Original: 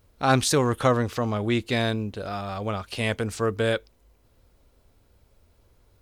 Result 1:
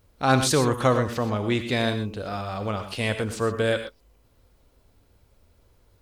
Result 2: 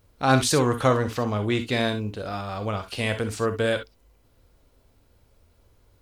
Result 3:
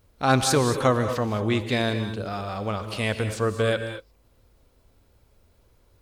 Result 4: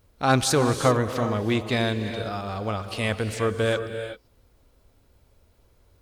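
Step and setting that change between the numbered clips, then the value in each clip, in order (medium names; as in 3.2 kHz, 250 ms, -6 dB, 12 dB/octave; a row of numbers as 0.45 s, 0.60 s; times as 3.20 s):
gated-style reverb, gate: 140 ms, 80 ms, 250 ms, 410 ms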